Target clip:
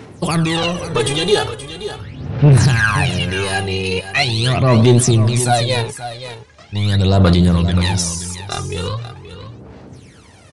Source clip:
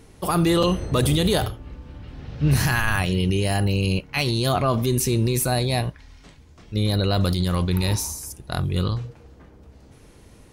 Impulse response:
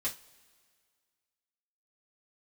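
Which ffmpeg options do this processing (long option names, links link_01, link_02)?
-filter_complex "[0:a]highpass=frequency=99:width=0.5412,highpass=frequency=99:width=1.3066,lowshelf=frequency=150:gain=8.5,asetrate=42845,aresample=44100,atempo=1.0293,asoftclip=type=tanh:threshold=-14.5dB,aphaser=in_gain=1:out_gain=1:delay=2.5:decay=0.72:speed=0.41:type=sinusoidal,asplit=2[link_01][link_02];[link_02]highpass=frequency=720:poles=1,volume=7dB,asoftclip=type=tanh:threshold=-3dB[link_03];[link_01][link_03]amix=inputs=2:normalize=0,lowpass=frequency=7100:poles=1,volume=-6dB,asplit=2[link_04][link_05];[link_05]aecho=0:1:527:0.251[link_06];[link_04][link_06]amix=inputs=2:normalize=0,aresample=22050,aresample=44100,volume=4dB"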